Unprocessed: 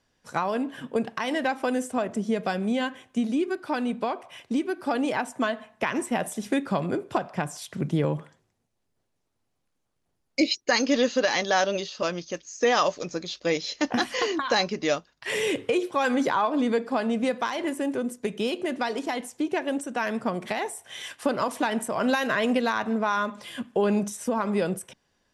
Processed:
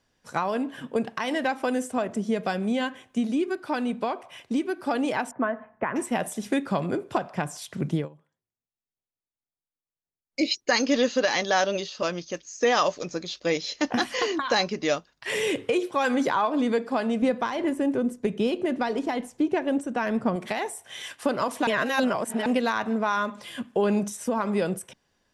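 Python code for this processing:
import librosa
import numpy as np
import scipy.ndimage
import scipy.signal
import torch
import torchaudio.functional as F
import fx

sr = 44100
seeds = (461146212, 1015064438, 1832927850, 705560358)

y = fx.lowpass(x, sr, hz=1800.0, slope=24, at=(5.31, 5.96))
y = fx.tilt_eq(y, sr, slope=-2.0, at=(17.22, 20.36))
y = fx.edit(y, sr, fx.fade_down_up(start_s=7.94, length_s=2.52, db=-23.0, fade_s=0.15),
    fx.reverse_span(start_s=21.67, length_s=0.79), tone=tone)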